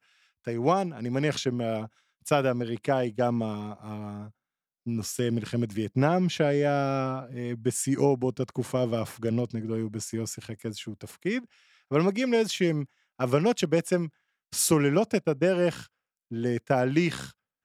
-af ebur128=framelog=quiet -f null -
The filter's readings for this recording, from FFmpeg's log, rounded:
Integrated loudness:
  I:         -27.6 LUFS
  Threshold: -38.2 LUFS
Loudness range:
  LRA:         4.8 LU
  Threshold: -48.2 LUFS
  LRA low:   -30.9 LUFS
  LRA high:  -26.2 LUFS